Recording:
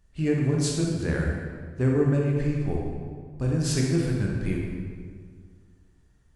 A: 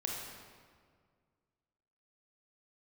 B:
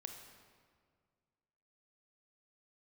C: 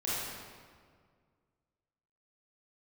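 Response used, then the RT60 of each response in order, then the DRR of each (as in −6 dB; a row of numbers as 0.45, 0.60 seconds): A; 1.9, 1.9, 1.9 seconds; −2.0, 4.0, −9.5 decibels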